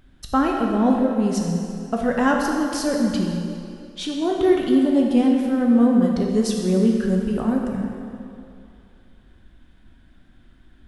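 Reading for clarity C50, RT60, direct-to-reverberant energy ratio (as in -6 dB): 1.5 dB, 2.5 s, -0.5 dB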